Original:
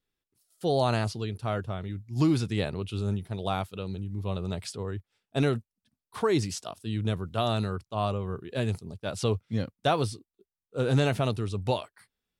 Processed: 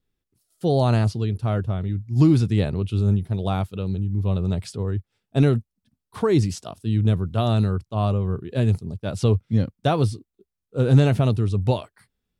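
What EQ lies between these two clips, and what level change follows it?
low-shelf EQ 360 Hz +11.5 dB
0.0 dB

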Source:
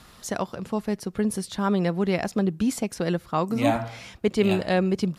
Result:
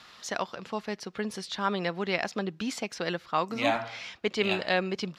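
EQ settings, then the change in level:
high-frequency loss of the air 210 metres
spectral tilt +4.5 dB per octave
0.0 dB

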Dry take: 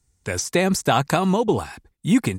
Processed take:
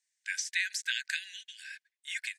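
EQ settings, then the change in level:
linear-phase brick-wall high-pass 1,500 Hz
head-to-tape spacing loss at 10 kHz 22 dB
high-shelf EQ 5,600 Hz +9.5 dB
0.0 dB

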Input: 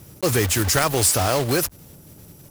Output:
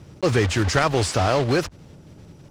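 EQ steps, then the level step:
high-frequency loss of the air 130 metres
+1.5 dB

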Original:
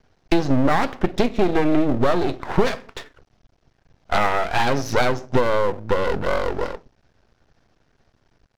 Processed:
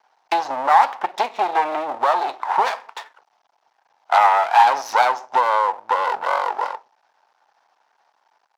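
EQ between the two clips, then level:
high-pass with resonance 870 Hz, resonance Q 4.9
−1.0 dB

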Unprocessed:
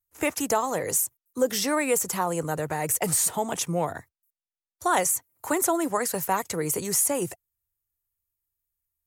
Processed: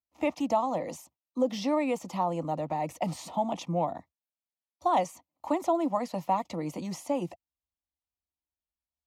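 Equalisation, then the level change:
high-pass filter 69 Hz
high-frequency loss of the air 260 metres
phaser with its sweep stopped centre 420 Hz, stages 6
+1.5 dB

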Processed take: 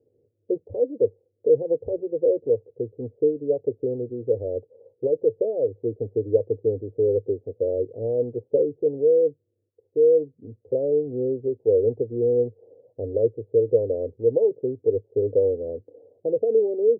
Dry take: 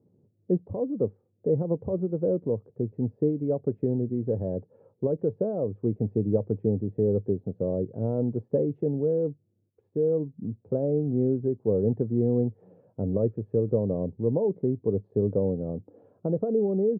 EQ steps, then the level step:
linear-phase brick-wall low-pass 1,100 Hz
parametric band 480 Hz +9.5 dB 0.47 octaves
phaser with its sweep stopped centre 450 Hz, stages 4
−1.0 dB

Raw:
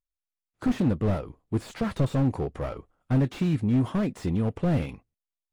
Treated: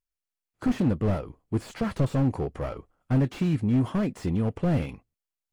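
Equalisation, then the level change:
notch filter 3,700 Hz, Q 17
0.0 dB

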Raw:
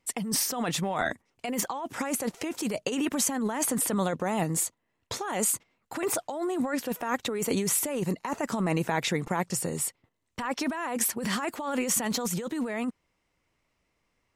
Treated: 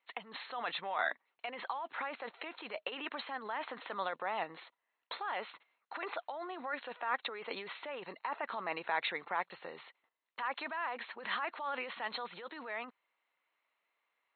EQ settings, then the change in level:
high-pass filter 1,000 Hz 12 dB per octave
linear-phase brick-wall low-pass 4,300 Hz
high-shelf EQ 2,200 Hz −9 dB
+1.0 dB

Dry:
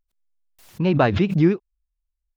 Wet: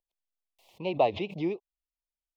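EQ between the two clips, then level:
Butterworth band-reject 1,500 Hz, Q 0.8
three-way crossover with the lows and the highs turned down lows −21 dB, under 500 Hz, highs −17 dB, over 3,300 Hz
notch filter 1,600 Hz, Q 17
0.0 dB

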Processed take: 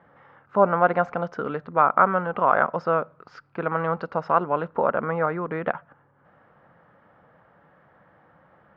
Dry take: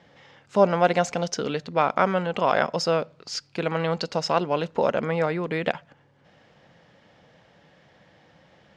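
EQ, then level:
low-pass with resonance 1,300 Hz, resonance Q 3.2
−2.5 dB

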